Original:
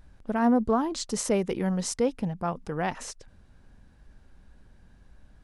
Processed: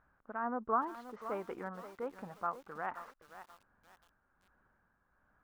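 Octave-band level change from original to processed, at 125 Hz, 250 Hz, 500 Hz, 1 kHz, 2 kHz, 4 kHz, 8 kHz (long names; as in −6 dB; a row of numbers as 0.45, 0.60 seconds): −22.0 dB, −19.0 dB, −13.0 dB, −5.0 dB, −7.5 dB, −25.5 dB, below −30 dB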